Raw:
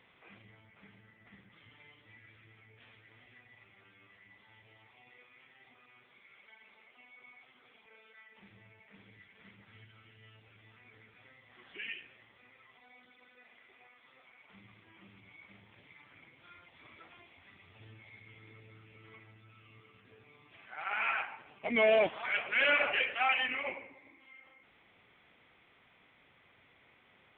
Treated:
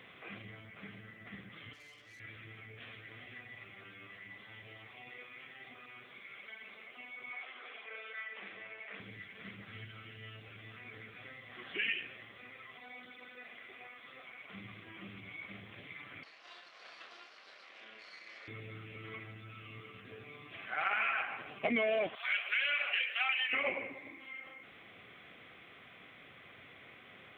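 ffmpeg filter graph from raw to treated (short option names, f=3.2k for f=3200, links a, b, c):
-filter_complex "[0:a]asettb=1/sr,asplit=3[a][b][c];[a]atrim=end=1.734[d];[b]atrim=start=1.73:end=2.2,asetpts=PTS-STARTPTS,afade=t=in:d=0.004:c=qsin,afade=t=out:st=0.466:d=0.004:c=qsin,equalizer=f=180:t=o:w=1.9:g=-9,aeval=exprs='(tanh(1260*val(0)+0.55)-tanh(0.55))/1260':c=same[e];[c]atrim=start=2.196[f];[d][e]acrossfade=d=0.004:c1=hsin:c2=qsin[g];[g][f]acrossfade=d=0.004:c1=qsin:c2=hsin,asettb=1/sr,asplit=3[h][i][j];[h]atrim=end=7.304[k];[i]atrim=start=7.3:end=9,asetpts=PTS-STARTPTS,afade=t=in:d=0.004:c=qsin,afade=t=out:st=1.696:d=0.004:c=qsin,acontrast=33,highpass=490,lowpass=3.3k[l];[j]atrim=start=8.996[m];[k][l]acrossfade=d=0.004:c1=hsin:c2=qsin[n];[n][m]acrossfade=d=0.004:c1=qsin:c2=hsin,asettb=1/sr,asplit=3[o][p][q];[o]atrim=end=16.234[r];[p]atrim=start=16.23:end=18.48,asetpts=PTS-STARTPTS,afade=t=in:d=0.004:c=qsin,afade=t=out:st=2.246:d=0.004:c=qsin,aeval=exprs='abs(val(0))':c=same,highpass=600,lowpass=3.4k,asplit=2[s][t];[t]adelay=28,volume=-5.5dB[u];[s][u]amix=inputs=2:normalize=0,atrim=end_sample=99225[v];[q]atrim=start=18.476[w];[r][v]acrossfade=d=0.004:c1=hsin:c2=qsin[x];[x][w]acrossfade=d=0.004:c1=qsin:c2=hsin,asettb=1/sr,asplit=3[y][z][aa];[y]atrim=end=22.154[ab];[z]atrim=start=22.15:end=23.53,asetpts=PTS-STARTPTS,afade=t=in:d=0.004:c=qsin,afade=t=out:st=1.376:d=0.004:c=qsin,highpass=290,aderivative,acontrast=31[ac];[aa]atrim=start=23.526[ad];[ab][ac]acrossfade=d=0.004:c1=hsin:c2=qsin[ae];[ae][ad]acrossfade=d=0.004:c1=qsin:c2=hsin,highpass=81,bandreject=f=900:w=5.3,acompressor=threshold=-39dB:ratio=10,volume=9.5dB"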